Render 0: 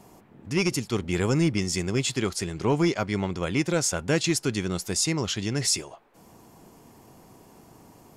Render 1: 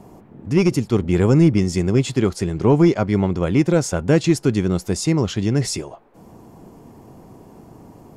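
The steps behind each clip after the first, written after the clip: tilt shelf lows +6.5 dB, about 1.2 kHz; trim +3.5 dB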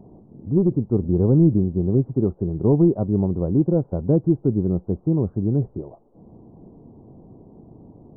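Gaussian low-pass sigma 12 samples; trim -1 dB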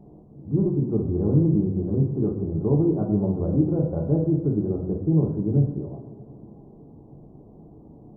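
peak limiter -12 dBFS, peak gain reduction 5 dB; two-slope reverb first 0.6 s, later 3 s, from -15 dB, DRR -2 dB; trim -5 dB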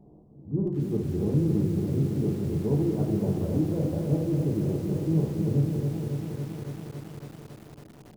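bit-crushed delay 277 ms, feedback 80%, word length 7-bit, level -6 dB; trim -5.5 dB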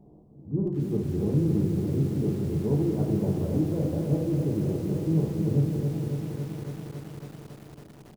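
delay 391 ms -14.5 dB

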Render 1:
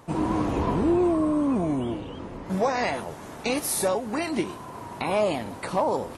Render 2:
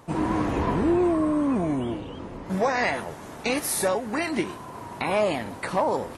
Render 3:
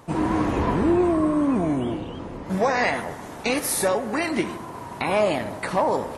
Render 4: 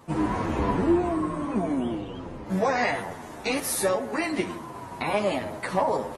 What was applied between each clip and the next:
dynamic bell 1.8 kHz, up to +6 dB, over -46 dBFS, Q 1.9
bucket-brigade echo 77 ms, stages 1024, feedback 70%, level -14 dB; trim +2 dB
endless flanger 9 ms -2.2 Hz

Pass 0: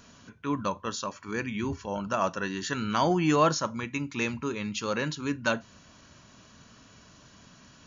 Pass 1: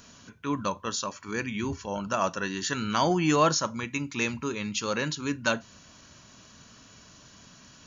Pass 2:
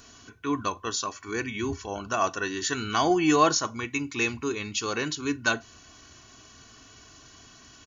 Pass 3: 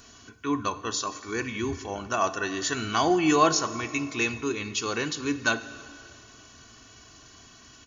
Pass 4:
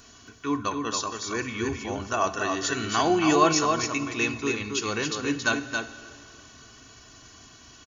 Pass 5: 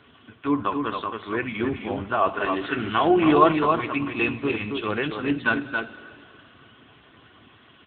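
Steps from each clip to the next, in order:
treble shelf 4 kHz +7 dB
comb 2.7 ms, depth 64%
plate-style reverb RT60 2.5 s, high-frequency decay 0.9×, DRR 12.5 dB
delay 274 ms -5 dB
trim +4.5 dB; AMR-NB 6.7 kbps 8 kHz

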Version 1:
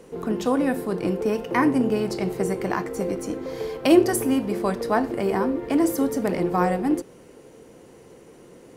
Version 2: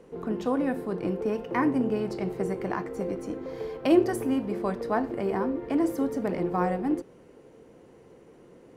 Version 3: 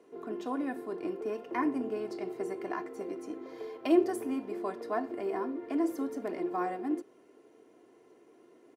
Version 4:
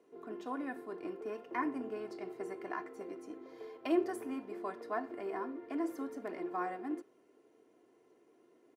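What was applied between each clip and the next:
treble shelf 4 kHz -11.5 dB; trim -4.5 dB
high-pass 230 Hz 12 dB/octave; comb 2.9 ms, depth 59%; trim -7 dB
dynamic bell 1.5 kHz, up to +6 dB, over -48 dBFS, Q 0.79; trim -7 dB

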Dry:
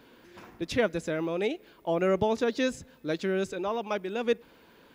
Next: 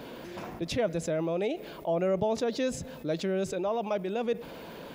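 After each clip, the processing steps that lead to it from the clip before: fifteen-band graphic EQ 160 Hz +6 dB, 630 Hz +8 dB, 1.6 kHz -3 dB; level flattener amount 50%; trim -8 dB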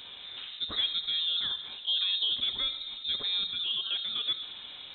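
reverberation RT60 1.5 s, pre-delay 6 ms, DRR 7.5 dB; frequency inversion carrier 3.9 kHz; trim -3 dB

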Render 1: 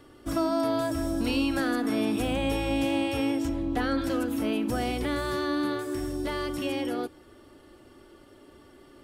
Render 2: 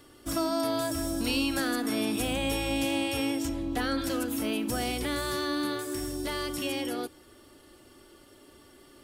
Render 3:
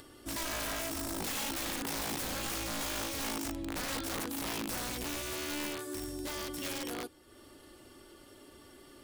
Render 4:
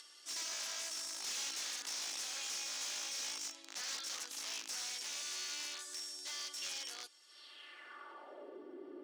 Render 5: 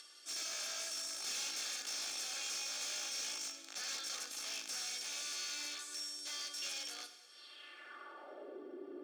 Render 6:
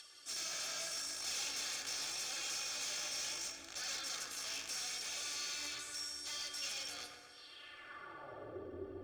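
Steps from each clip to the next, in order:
treble shelf 3.3 kHz +11.5 dB; trim -3 dB
integer overflow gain 25 dB; upward compressor, threshold -41 dBFS; trim -6 dB
band-pass sweep 6.1 kHz -> 340 Hz, 7.25–8.66 s; overdrive pedal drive 17 dB, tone 2.6 kHz, clips at -30.5 dBFS; high-pass 230 Hz 12 dB/octave; trim +4.5 dB
comb of notches 980 Hz; reverberation RT60 1.3 s, pre-delay 13 ms, DRR 8.5 dB; trim +1 dB
octave divider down 2 oct, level -3 dB; flange 0.78 Hz, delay 1.1 ms, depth 7 ms, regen +54%; bucket-brigade echo 132 ms, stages 2048, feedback 59%, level -5.5 dB; trim +4 dB

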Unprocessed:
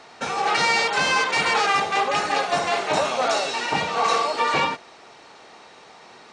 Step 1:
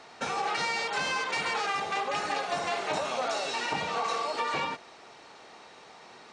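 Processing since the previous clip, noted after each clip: compression, threshold -23 dBFS, peak gain reduction 7 dB; trim -4 dB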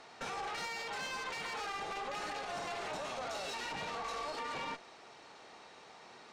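peak limiter -26.5 dBFS, peak gain reduction 8.5 dB; valve stage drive 32 dB, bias 0.6; trim -1.5 dB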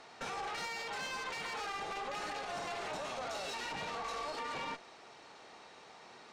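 no audible change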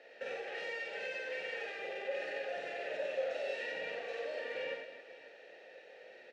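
vowel filter e; on a send: multi-tap echo 49/90/247/537 ms -3.5/-3.5/-10/-14 dB; on the sum: trim +9 dB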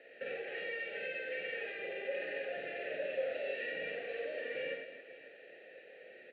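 distance through air 250 m; static phaser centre 2.4 kHz, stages 4; trim +4.5 dB

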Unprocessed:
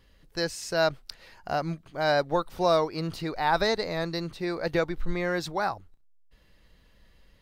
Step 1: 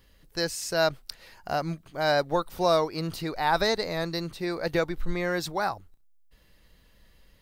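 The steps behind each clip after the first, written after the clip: treble shelf 8.6 kHz +10.5 dB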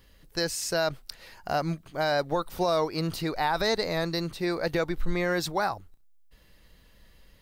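peak limiter -18.5 dBFS, peak gain reduction 7 dB; trim +2 dB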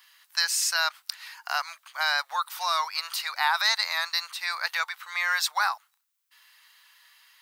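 steep high-pass 960 Hz 36 dB/octave; trim +7 dB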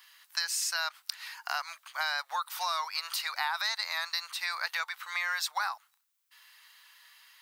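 compression 3:1, threshold -30 dBFS, peak gain reduction 9 dB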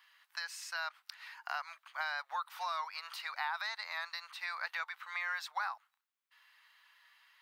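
tone controls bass -13 dB, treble -13 dB; trim -4.5 dB

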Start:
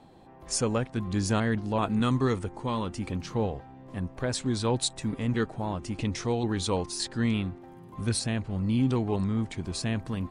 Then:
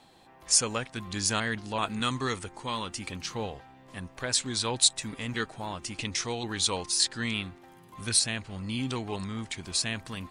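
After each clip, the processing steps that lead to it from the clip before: tilt shelf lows -8.5 dB, about 1.1 kHz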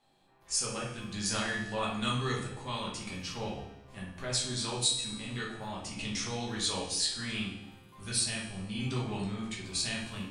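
level rider gain up to 8 dB; feedback comb 69 Hz, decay 1.1 s, harmonics all, mix 70%; simulated room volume 87 m³, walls mixed, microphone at 1.3 m; trim -8 dB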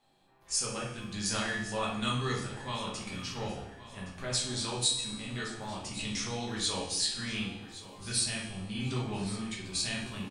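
feedback delay 1117 ms, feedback 41%, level -15.5 dB

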